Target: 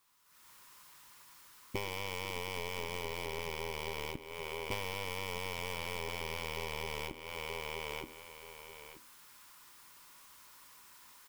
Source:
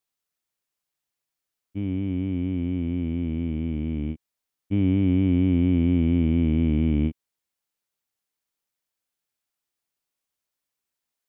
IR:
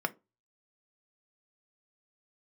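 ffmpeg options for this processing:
-filter_complex "[0:a]asplit=2[link_01][link_02];[link_02]highpass=frequency=940:width_type=q:width=5.1[link_03];[1:a]atrim=start_sample=2205,lowshelf=frequency=420:gain=10.5[link_04];[link_03][link_04]afir=irnorm=-1:irlink=0,volume=-13dB[link_05];[link_01][link_05]amix=inputs=2:normalize=0,acrusher=bits=9:mode=log:mix=0:aa=0.000001,dynaudnorm=framelen=240:gausssize=3:maxgain=15.5dB,afftfilt=real='re*lt(hypot(re,im),0.251)':imag='im*lt(hypot(re,im),0.251)':win_size=1024:overlap=0.75,aeval=exprs='(tanh(14.1*val(0)+0.45)-tanh(0.45))/14.1':channel_layout=same,aecho=1:1:928|1856:0.2|0.0319,aeval=exprs='0.0891*(cos(1*acos(clip(val(0)/0.0891,-1,1)))-cos(1*PI/2))+0.02*(cos(4*acos(clip(val(0)/0.0891,-1,1)))-cos(4*PI/2))':channel_layout=same,acompressor=threshold=-47dB:ratio=8,volume=11.5dB"

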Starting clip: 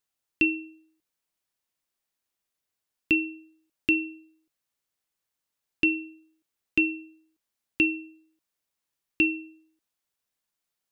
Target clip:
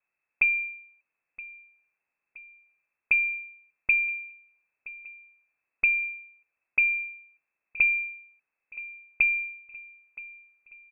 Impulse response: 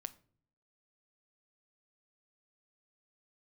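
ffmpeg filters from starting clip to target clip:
-filter_complex "[0:a]lowshelf=frequency=140:width_type=q:width=1.5:gain=8.5,acrossover=split=370|1200[link_01][link_02][link_03];[link_01]acompressor=threshold=-35dB:ratio=4[link_04];[link_02]acompressor=threshold=-40dB:ratio=4[link_05];[link_03]acompressor=threshold=-31dB:ratio=4[link_06];[link_04][link_05][link_06]amix=inputs=3:normalize=0,acrossover=split=380|1300[link_07][link_08][link_09];[link_09]alimiter=level_in=4dB:limit=-24dB:level=0:latency=1:release=447,volume=-4dB[link_10];[link_07][link_08][link_10]amix=inputs=3:normalize=0,equalizer=frequency=190:width=0.53:gain=11,asplit=2[link_11][link_12];[link_12]aecho=0:1:971|1942|2913|3884:0.112|0.0583|0.0303|0.0158[link_13];[link_11][link_13]amix=inputs=2:normalize=0,lowpass=frequency=2300:width_type=q:width=0.5098,lowpass=frequency=2300:width_type=q:width=0.6013,lowpass=frequency=2300:width_type=q:width=0.9,lowpass=frequency=2300:width_type=q:width=2.563,afreqshift=-2700,volume=3.5dB"

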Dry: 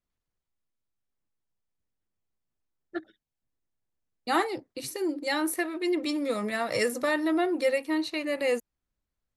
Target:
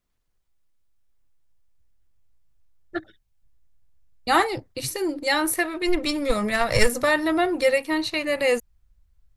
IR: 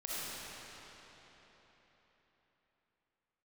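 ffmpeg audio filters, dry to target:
-filter_complex "[0:a]asplit=3[link_01][link_02][link_03];[link_01]afade=type=out:start_time=5.85:duration=0.02[link_04];[link_02]aeval=exprs='0.188*(cos(1*acos(clip(val(0)/0.188,-1,1)))-cos(1*PI/2))+0.0531*(cos(2*acos(clip(val(0)/0.188,-1,1)))-cos(2*PI/2))+0.00473*(cos(8*acos(clip(val(0)/0.188,-1,1)))-cos(8*PI/2))':channel_layout=same,afade=type=in:start_time=5.85:duration=0.02,afade=type=out:start_time=6.99:duration=0.02[link_05];[link_03]afade=type=in:start_time=6.99:duration=0.02[link_06];[link_04][link_05][link_06]amix=inputs=3:normalize=0,asubboost=boost=11.5:cutoff=83,volume=7.5dB"

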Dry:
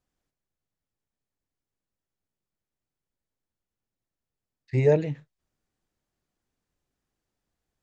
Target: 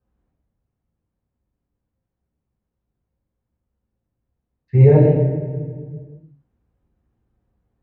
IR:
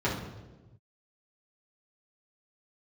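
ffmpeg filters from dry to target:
-filter_complex "[0:a]highshelf=frequency=2900:gain=-10.5[link_01];[1:a]atrim=start_sample=2205,asetrate=24696,aresample=44100[link_02];[link_01][link_02]afir=irnorm=-1:irlink=0,volume=-6.5dB"

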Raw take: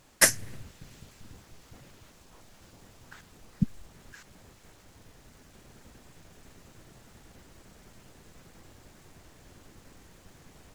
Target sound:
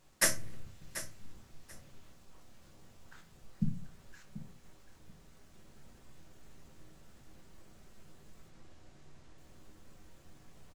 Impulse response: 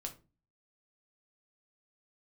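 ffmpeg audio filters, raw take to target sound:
-filter_complex "[0:a]asettb=1/sr,asplit=3[link_01][link_02][link_03];[link_01]atrim=end=8.484[link_04];[link_02]atrim=start=8.48:end=9.38,asetpts=PTS-STARTPTS,afade=type=in:duration=0.004:curve=qsin,afade=type=out:start_time=0.896:duration=0.004:curve=qsin,lowpass=7400[link_05];[link_03]atrim=start=9.376[link_06];[link_04][link_05]acrossfade=duration=0.004:curve1=hsin:curve2=qsin[link_07];[link_07][link_06]acrossfade=duration=0.004:curve1=qsin:curve2=hsin,aecho=1:1:736|1472:0.211|0.0402[link_08];[1:a]atrim=start_sample=2205[link_09];[link_08][link_09]afir=irnorm=-1:irlink=0,volume=-5dB"

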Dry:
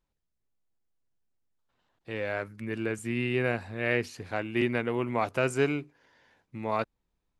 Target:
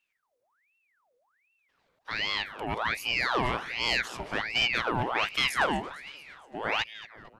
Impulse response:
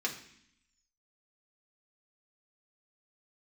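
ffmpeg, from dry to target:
-filter_complex "[0:a]aeval=exprs='0.251*(cos(1*acos(clip(val(0)/0.251,-1,1)))-cos(1*PI/2))+0.0398*(cos(5*acos(clip(val(0)/0.251,-1,1)))-cos(5*PI/2))':channel_layout=same,asplit=7[link_01][link_02][link_03][link_04][link_05][link_06][link_07];[link_02]adelay=228,afreqshift=-36,volume=-16dB[link_08];[link_03]adelay=456,afreqshift=-72,volume=-20.6dB[link_09];[link_04]adelay=684,afreqshift=-108,volume=-25.2dB[link_10];[link_05]adelay=912,afreqshift=-144,volume=-29.7dB[link_11];[link_06]adelay=1140,afreqshift=-180,volume=-34.3dB[link_12];[link_07]adelay=1368,afreqshift=-216,volume=-38.9dB[link_13];[link_01][link_08][link_09][link_10][link_11][link_12][link_13]amix=inputs=7:normalize=0,aeval=exprs='val(0)*sin(2*PI*1600*n/s+1600*0.7/1.3*sin(2*PI*1.3*n/s))':channel_layout=same"

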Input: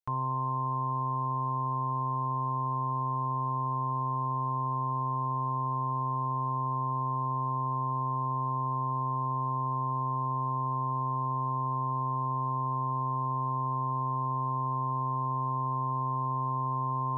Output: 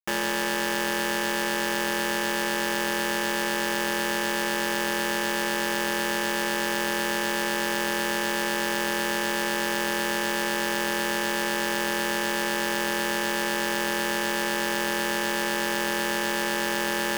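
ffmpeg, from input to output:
ffmpeg -i in.wav -af "aeval=exprs='val(0)*sin(2*PI*700*n/s)':channel_layout=same,acrusher=bits=4:mix=0:aa=0.000001,volume=5.5dB" out.wav

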